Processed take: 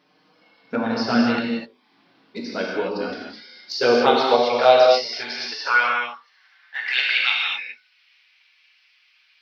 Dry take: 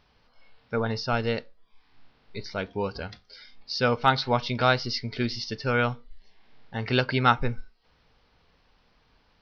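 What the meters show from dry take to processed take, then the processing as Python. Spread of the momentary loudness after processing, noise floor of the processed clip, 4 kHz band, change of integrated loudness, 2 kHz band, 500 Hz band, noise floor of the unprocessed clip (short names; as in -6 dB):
16 LU, -61 dBFS, +7.5 dB, +6.5 dB, +8.0 dB, +9.5 dB, -65 dBFS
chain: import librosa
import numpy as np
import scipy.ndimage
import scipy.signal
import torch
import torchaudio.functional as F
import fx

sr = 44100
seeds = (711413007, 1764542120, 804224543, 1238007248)

y = fx.hum_notches(x, sr, base_hz=50, count=9)
y = fx.env_flanger(y, sr, rest_ms=6.6, full_db=-18.5)
y = fx.filter_sweep_highpass(y, sr, from_hz=250.0, to_hz=2400.0, start_s=3.26, end_s=7.26, q=3.4)
y = fx.rev_gated(y, sr, seeds[0], gate_ms=280, shape='flat', drr_db=-2.5)
y = y * 10.0 ** (4.0 / 20.0)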